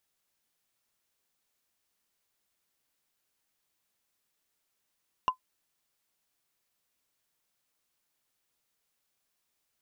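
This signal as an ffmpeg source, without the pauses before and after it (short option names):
-f lavfi -i "aevalsrc='0.141*pow(10,-3*t/0.1)*sin(2*PI*1020*t)+0.0398*pow(10,-3*t/0.03)*sin(2*PI*2812.1*t)+0.0112*pow(10,-3*t/0.013)*sin(2*PI*5512.1*t)+0.00316*pow(10,-3*t/0.007)*sin(2*PI*9111.7*t)+0.000891*pow(10,-3*t/0.004)*sin(2*PI*13606.8*t)':d=0.45:s=44100"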